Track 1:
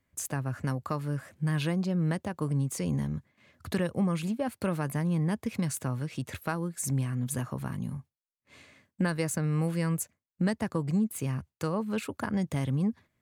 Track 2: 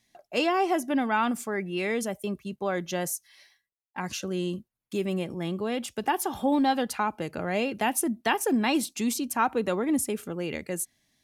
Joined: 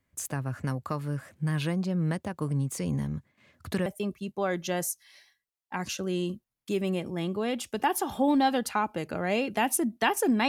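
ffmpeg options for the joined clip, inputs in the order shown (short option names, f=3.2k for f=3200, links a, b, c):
-filter_complex "[0:a]apad=whole_dur=10.48,atrim=end=10.48,atrim=end=3.862[a];[1:a]atrim=start=2.098:end=8.72[b];[a][b]acrossfade=d=0.004:c1=hsin:c2=hsin"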